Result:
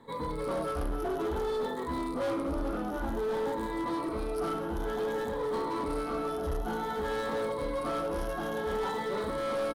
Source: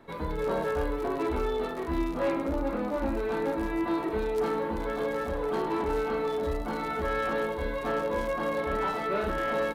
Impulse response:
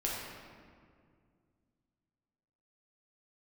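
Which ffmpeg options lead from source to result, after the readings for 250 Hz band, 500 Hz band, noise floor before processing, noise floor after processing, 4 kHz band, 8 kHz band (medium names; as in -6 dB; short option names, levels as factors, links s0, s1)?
-3.0 dB, -3.0 dB, -34 dBFS, -35 dBFS, -0.5 dB, no reading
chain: -af "afftfilt=real='re*pow(10,11/40*sin(2*PI*(1*log(max(b,1)*sr/1024/100)/log(2)-(0.55)*(pts-256)/sr)))':imag='im*pow(10,11/40*sin(2*PI*(1*log(max(b,1)*sr/1024/100)/log(2)-(0.55)*(pts-256)/sr)))':win_size=1024:overlap=0.75,bandreject=f=610:w=12,volume=21.1,asoftclip=hard,volume=0.0473,superequalizer=11b=0.631:12b=0.447:16b=2,aecho=1:1:1108:0.168,volume=0.794"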